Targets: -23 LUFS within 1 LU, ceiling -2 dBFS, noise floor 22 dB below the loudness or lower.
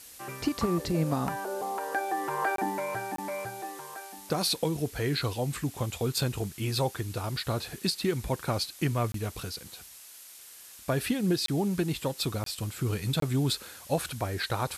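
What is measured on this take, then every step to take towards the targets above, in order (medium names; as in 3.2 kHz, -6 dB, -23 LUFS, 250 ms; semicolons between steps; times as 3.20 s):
dropouts 6; longest dropout 23 ms; noise floor -49 dBFS; noise floor target -53 dBFS; loudness -31.0 LUFS; peak level -15.5 dBFS; loudness target -23.0 LUFS
-> interpolate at 2.56/3.16/9.12/11.46/12.44/13.20 s, 23 ms; noise reduction 6 dB, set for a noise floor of -49 dBFS; trim +8 dB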